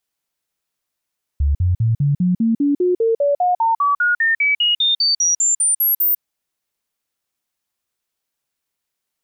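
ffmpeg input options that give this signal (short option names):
-f lavfi -i "aevalsrc='0.224*clip(min(mod(t,0.2),0.15-mod(t,0.2))/0.005,0,1)*sin(2*PI*71.5*pow(2,floor(t/0.2)/3)*mod(t,0.2))':d=4.8:s=44100"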